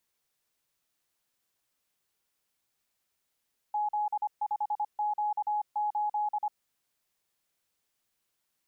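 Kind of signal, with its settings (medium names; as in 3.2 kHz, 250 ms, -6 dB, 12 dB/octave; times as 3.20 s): Morse "Z5Q8" 25 wpm 839 Hz -26.5 dBFS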